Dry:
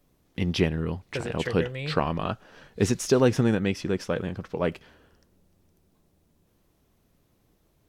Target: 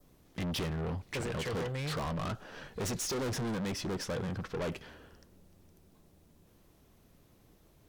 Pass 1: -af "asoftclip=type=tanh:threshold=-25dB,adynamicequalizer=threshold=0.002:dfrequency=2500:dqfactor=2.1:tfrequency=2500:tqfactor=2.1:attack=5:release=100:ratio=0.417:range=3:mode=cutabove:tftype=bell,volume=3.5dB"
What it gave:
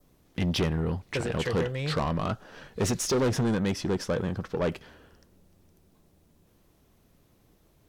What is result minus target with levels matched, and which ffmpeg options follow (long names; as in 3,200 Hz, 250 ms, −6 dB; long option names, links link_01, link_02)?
soft clipping: distortion −5 dB
-af "asoftclip=type=tanh:threshold=-36dB,adynamicequalizer=threshold=0.002:dfrequency=2500:dqfactor=2.1:tfrequency=2500:tqfactor=2.1:attack=5:release=100:ratio=0.417:range=3:mode=cutabove:tftype=bell,volume=3.5dB"